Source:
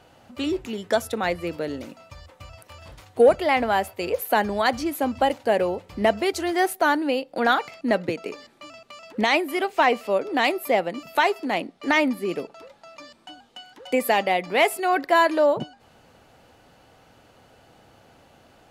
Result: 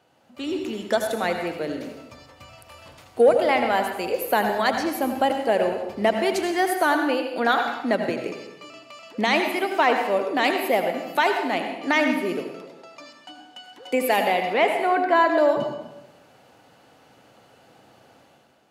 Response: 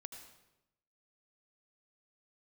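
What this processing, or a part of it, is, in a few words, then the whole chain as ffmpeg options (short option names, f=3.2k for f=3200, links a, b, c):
far laptop microphone: -filter_complex "[0:a]asettb=1/sr,asplit=3[a][b][c];[a]atrim=end=14.534[d];[b]atrim=start=14.53:end=15.38,asetpts=PTS-STARTPTS,afade=t=in:d=0.004:c=qsin,afade=t=out:st=0.846:d=0.004:c=qsin,aemphasis=mode=reproduction:type=75fm[e];[c]atrim=start=15.376[f];[d][e]acrossfade=d=0.004:c1=hsin:c2=qsin[g];[g][f]acrossfade=d=0.004:c1=qsin:c2=hsin[h];[1:a]atrim=start_sample=2205[i];[h][i]afir=irnorm=-1:irlink=0,highpass=130,dynaudnorm=f=130:g=7:m=8dB,volume=-2.5dB"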